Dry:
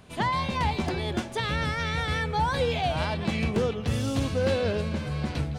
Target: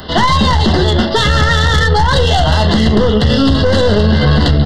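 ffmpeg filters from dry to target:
-filter_complex "[0:a]asplit=2[s0][s1];[s1]aecho=0:1:14|41|52:0.473|0.126|0.251[s2];[s0][s2]amix=inputs=2:normalize=0,aresample=11025,aresample=44100,equalizer=f=120:t=o:w=0.59:g=-7,atempo=1.2,aeval=exprs='(tanh(14.1*val(0)+0.4)-tanh(0.4))/14.1':c=same,asuperstop=centerf=2400:order=20:qfactor=3.9,highshelf=f=4300:g=11,acrossover=split=200[s3][s4];[s4]acompressor=threshold=0.02:ratio=4[s5];[s3][s5]amix=inputs=2:normalize=0,alimiter=level_in=17.8:limit=0.891:release=50:level=0:latency=1,volume=0.891"

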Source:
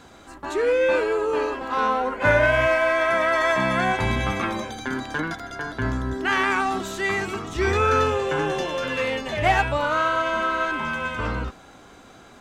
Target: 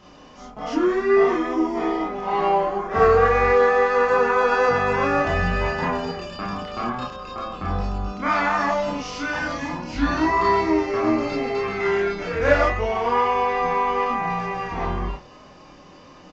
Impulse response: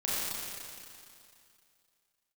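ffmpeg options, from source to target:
-filter_complex "[0:a]asetrate=33516,aresample=44100,aresample=16000,aresample=44100,bandreject=f=60:t=h:w=6,bandreject=f=120:t=h:w=6[s0];[1:a]atrim=start_sample=2205,atrim=end_sample=3528,asetrate=57330,aresample=44100[s1];[s0][s1]afir=irnorm=-1:irlink=0"

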